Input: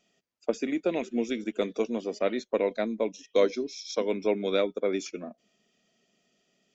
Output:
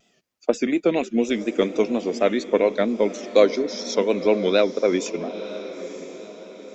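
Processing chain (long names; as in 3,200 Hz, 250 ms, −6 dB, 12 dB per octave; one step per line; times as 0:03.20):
pitch vibrato 4.2 Hz 96 cents
feedback delay with all-pass diffusion 965 ms, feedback 42%, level −13 dB
level +7.5 dB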